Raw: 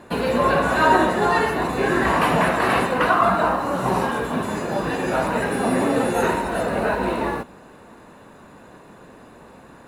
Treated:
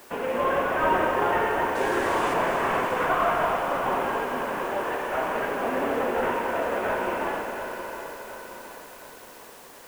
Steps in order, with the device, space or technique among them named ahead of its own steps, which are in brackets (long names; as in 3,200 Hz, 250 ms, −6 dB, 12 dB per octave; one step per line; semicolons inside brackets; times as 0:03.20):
0:04.69–0:05.15: high-pass filter 230 Hz → 540 Hz 12 dB per octave
army field radio (band-pass filter 360–2,900 Hz; variable-slope delta modulation 16 kbit/s; white noise bed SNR 24 dB)
0:01.75–0:02.34: flat-topped bell 5,900 Hz +10.5 dB
echo machine with several playback heads 90 ms, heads all three, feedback 71%, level −13.5 dB
feedback echo at a low word length 718 ms, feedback 55%, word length 7 bits, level −9.5 dB
level −4 dB